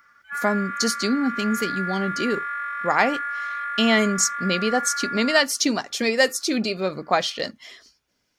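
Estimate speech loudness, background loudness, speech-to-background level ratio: -23.0 LUFS, -29.0 LUFS, 6.0 dB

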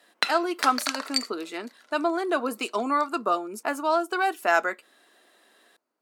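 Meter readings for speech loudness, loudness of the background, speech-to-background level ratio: -26.5 LUFS, -29.5 LUFS, 3.0 dB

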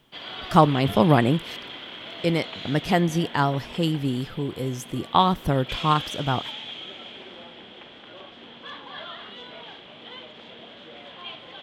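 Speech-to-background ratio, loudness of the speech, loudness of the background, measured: 13.5 dB, -23.5 LUFS, -37.0 LUFS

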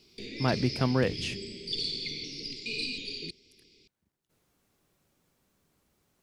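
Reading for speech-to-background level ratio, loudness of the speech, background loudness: 5.5 dB, -29.5 LUFS, -35.0 LUFS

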